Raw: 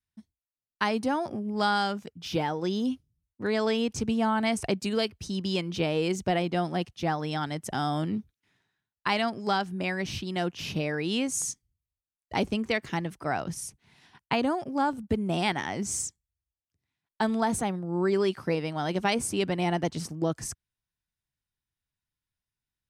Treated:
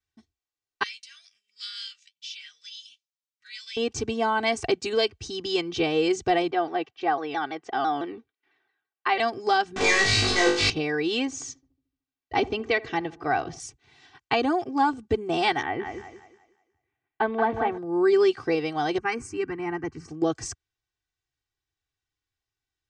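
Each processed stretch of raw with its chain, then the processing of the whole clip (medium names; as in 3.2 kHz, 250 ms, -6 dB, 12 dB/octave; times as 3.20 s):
0.83–3.77 s: inverse Chebyshev high-pass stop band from 920 Hz, stop band 50 dB + flange 1.3 Hz, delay 4 ms, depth 8.5 ms, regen -48%
6.51–9.20 s: band-pass 340–2700 Hz + vibrato with a chosen wave saw down 6 Hz, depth 160 cents
9.76–10.70 s: rippled EQ curve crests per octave 0.94, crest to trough 13 dB + companded quantiser 2-bit + flutter echo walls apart 3.4 m, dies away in 0.52 s
11.25–13.60 s: low-pass 4.4 kHz + filtered feedback delay 75 ms, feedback 60%, low-pass 960 Hz, level -18 dB
15.62–17.78 s: low-pass 2.6 kHz 24 dB/octave + thinning echo 180 ms, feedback 36%, high-pass 160 Hz, level -6 dB
18.98–20.08 s: low-pass 3.5 kHz 6 dB/octave + static phaser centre 1.5 kHz, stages 4 + three bands expanded up and down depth 70%
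whole clip: steep low-pass 7.6 kHz 36 dB/octave; bass shelf 83 Hz -7.5 dB; comb 2.6 ms, depth 89%; trim +1.5 dB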